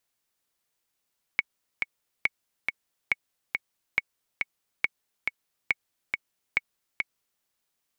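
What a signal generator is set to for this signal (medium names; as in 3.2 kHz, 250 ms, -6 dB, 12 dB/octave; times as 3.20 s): metronome 139 bpm, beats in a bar 2, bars 7, 2.22 kHz, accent 4 dB -9 dBFS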